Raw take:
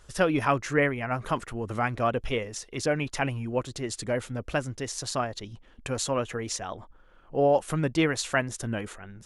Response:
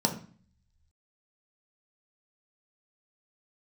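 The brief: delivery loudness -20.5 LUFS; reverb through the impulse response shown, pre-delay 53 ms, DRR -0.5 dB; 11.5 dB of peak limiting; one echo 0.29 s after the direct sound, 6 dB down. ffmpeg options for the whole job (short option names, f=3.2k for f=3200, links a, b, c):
-filter_complex "[0:a]alimiter=limit=-22dB:level=0:latency=1,aecho=1:1:290:0.501,asplit=2[a][b];[1:a]atrim=start_sample=2205,adelay=53[c];[b][c]afir=irnorm=-1:irlink=0,volume=-9dB[d];[a][d]amix=inputs=2:normalize=0,volume=5dB"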